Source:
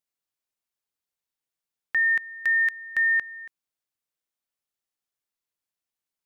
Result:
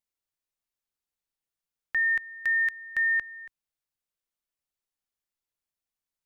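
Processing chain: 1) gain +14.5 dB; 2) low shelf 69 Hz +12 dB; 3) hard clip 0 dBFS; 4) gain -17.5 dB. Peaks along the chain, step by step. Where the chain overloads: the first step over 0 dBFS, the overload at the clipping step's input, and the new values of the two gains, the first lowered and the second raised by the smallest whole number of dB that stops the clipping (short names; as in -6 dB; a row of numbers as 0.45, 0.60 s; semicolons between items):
-3.5, -3.0, -3.0, -20.5 dBFS; no overload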